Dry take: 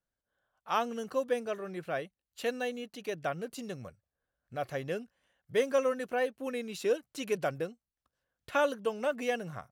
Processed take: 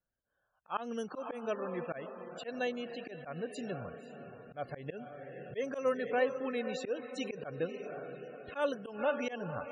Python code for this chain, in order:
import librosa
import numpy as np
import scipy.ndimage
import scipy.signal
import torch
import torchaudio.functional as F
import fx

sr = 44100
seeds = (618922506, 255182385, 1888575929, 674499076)

y = fx.echo_diffused(x, sr, ms=514, feedback_pct=52, wet_db=-11.0)
y = fx.spec_topn(y, sr, count=64)
y = fx.auto_swell(y, sr, attack_ms=141.0)